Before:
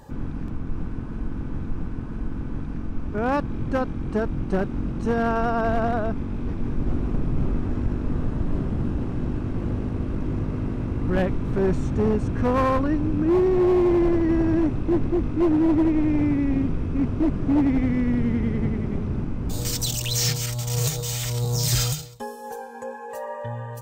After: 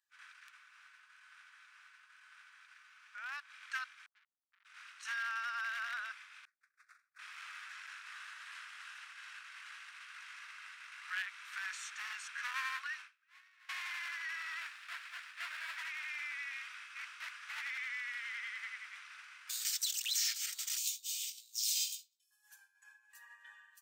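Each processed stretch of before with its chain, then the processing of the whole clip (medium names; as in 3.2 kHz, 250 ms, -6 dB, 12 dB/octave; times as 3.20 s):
0.56–3.47 s: dynamic bell 510 Hz, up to +8 dB, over -39 dBFS, Q 0.98 + compression 4:1, threshold -24 dBFS
4.06–4.65 s: resonances exaggerated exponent 3 + valve stage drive 34 dB, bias 0.8
6.45–7.19 s: expander -16 dBFS + static phaser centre 610 Hz, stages 8
13.02–13.69 s: high-pass 1 kHz + treble shelf 2.8 kHz -4.5 dB
14.36–15.77 s: band-stop 6.1 kHz, Q 8.1 + sliding maximum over 17 samples
20.77–22.31 s: steep high-pass 2.5 kHz 48 dB/octave + doubling 18 ms -5 dB
whole clip: expander -22 dBFS; steep high-pass 1.5 kHz 36 dB/octave; compression 2.5:1, threshold -43 dBFS; trim +4.5 dB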